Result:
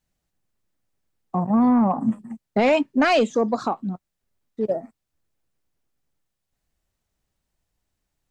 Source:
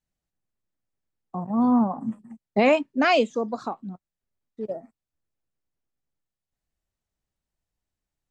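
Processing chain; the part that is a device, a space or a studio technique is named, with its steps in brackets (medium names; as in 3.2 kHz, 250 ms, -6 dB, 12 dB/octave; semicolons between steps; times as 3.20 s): soft clipper into limiter (saturation -14 dBFS, distortion -17 dB; peak limiter -20 dBFS, peak gain reduction 5.5 dB); trim +8 dB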